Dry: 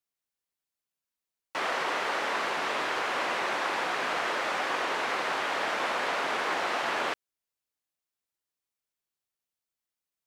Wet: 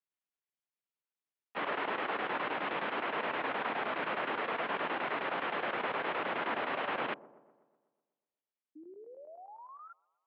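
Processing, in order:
in parallel at −9 dB: comparator with hysteresis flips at −33.5 dBFS
on the sum: sound drawn into the spectrogram rise, 0:08.75–0:09.93, 390–1,500 Hz −44 dBFS
square-wave tremolo 9.6 Hz, depth 65%, duty 80%
delay with a band-pass on its return 124 ms, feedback 56%, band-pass 430 Hz, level −16 dB
single-sideband voice off tune −94 Hz 250–3,400 Hz
level −5.5 dB

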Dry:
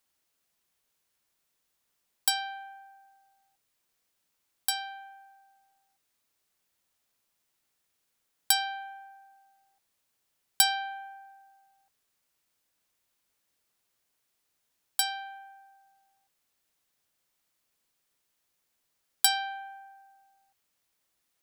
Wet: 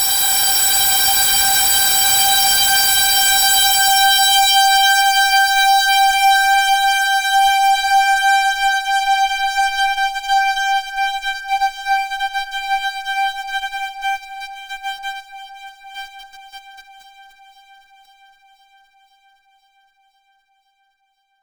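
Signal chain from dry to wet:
extreme stretch with random phases 25×, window 0.25 s, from 0:08.43
fuzz pedal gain 39 dB, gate −44 dBFS
brickwall limiter −16 dBFS, peak gain reduction 6.5 dB
on a send: delay that swaps between a low-pass and a high-pass 258 ms, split 1,900 Hz, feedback 85%, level −12 dB
on the sum: level +6 dB

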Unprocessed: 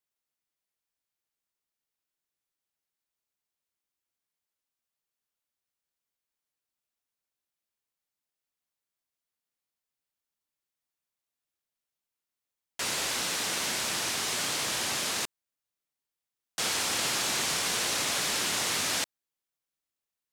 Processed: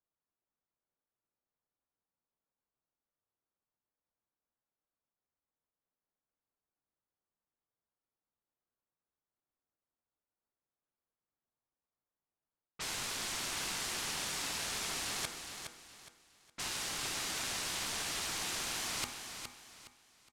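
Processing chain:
low-pass that shuts in the quiet parts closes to 830 Hz, open at −31 dBFS
hum removal 146.7 Hz, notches 12
reversed playback
downward compressor, threshold −40 dBFS, peak gain reduction 13 dB
reversed playback
ring modulation 540 Hz
repeating echo 415 ms, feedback 31%, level −7.5 dB
level +6 dB

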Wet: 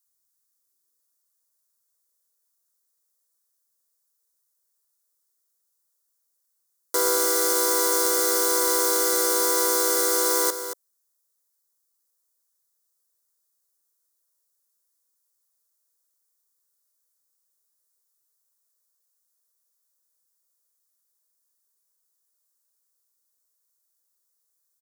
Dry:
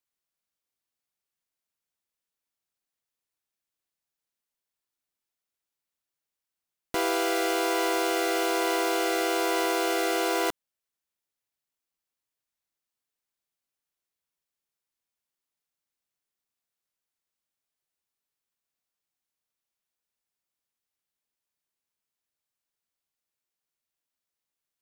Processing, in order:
bass and treble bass +2 dB, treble +14 dB
phaser with its sweep stopped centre 710 Hz, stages 6
high-pass filter sweep 77 Hz → 530 Hz, 0:00.12–0:01.09
single-tap delay 228 ms −10.5 dB
level +1.5 dB

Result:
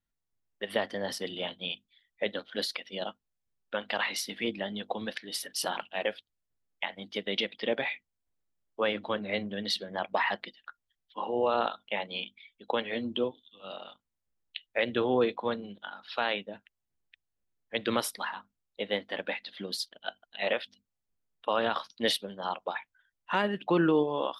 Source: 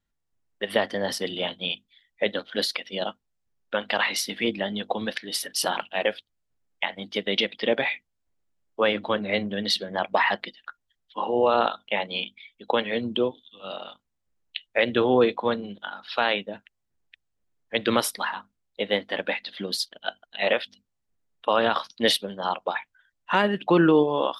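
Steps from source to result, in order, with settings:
0:12.83–0:13.24: double-tracking delay 12 ms −7 dB
level −6.5 dB

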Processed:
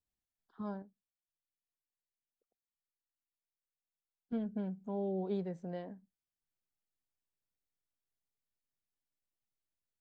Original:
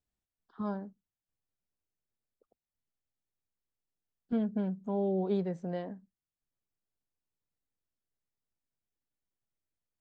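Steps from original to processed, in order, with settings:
parametric band 1,200 Hz −2.5 dB 0.24 octaves
tuned comb filter 760 Hz, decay 0.34 s, mix 30%
0:00.82–0:04.46: expander for the loud parts 1.5 to 1, over −50 dBFS
level −2.5 dB

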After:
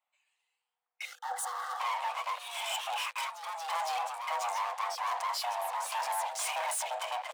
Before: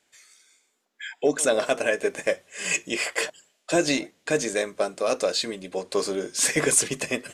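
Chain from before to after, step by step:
adaptive Wiener filter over 9 samples
low-shelf EQ 490 Hz +6.5 dB
leveller curve on the samples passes 5
brickwall limiter −23 dBFS, peak gain reduction 17 dB
delay with pitch and tempo change per echo 144 ms, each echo +2 semitones, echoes 2, each echo −6 dB
0:01.05–0:01.80: phaser with its sweep stopped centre 510 Hz, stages 6
frequency shifter +490 Hz
level −7.5 dB

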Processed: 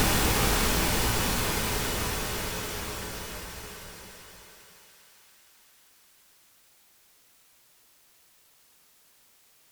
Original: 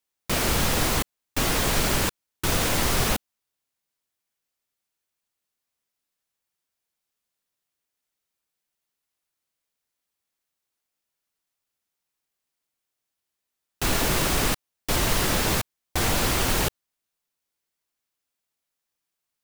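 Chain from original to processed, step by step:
extreme stretch with random phases 22×, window 1.00 s, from 0:03.16
in parallel at −10 dB: bit-depth reduction 8 bits, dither triangular
on the sum: feedback echo with a high-pass in the loop 789 ms, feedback 68%, high-pass 280 Hz, level −12 dB
wrong playback speed 7.5 ips tape played at 15 ips

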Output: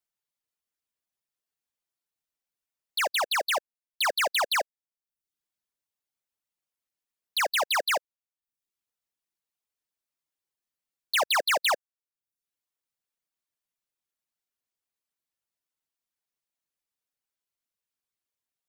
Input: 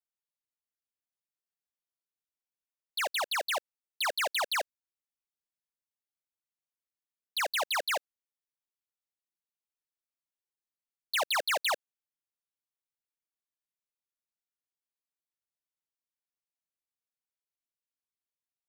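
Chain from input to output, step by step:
reverb reduction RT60 0.56 s
level +5 dB

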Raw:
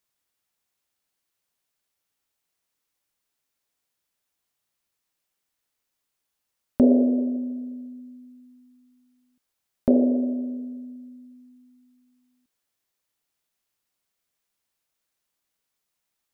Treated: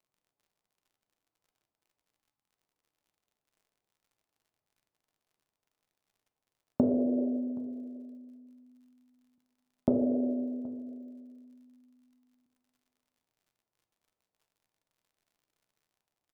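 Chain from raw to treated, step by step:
high-pass filter 71 Hz 24 dB per octave
time-frequency box erased 0:02.19–0:02.52, 340–770 Hz
low-pass filter 1,000 Hz 24 dB per octave
downward compressor, threshold −22 dBFS, peak gain reduction 9.5 dB
surface crackle 69 per second −61 dBFS
single-tap delay 773 ms −20.5 dB
on a send at −7.5 dB: convolution reverb RT60 0.65 s, pre-delay 3 ms

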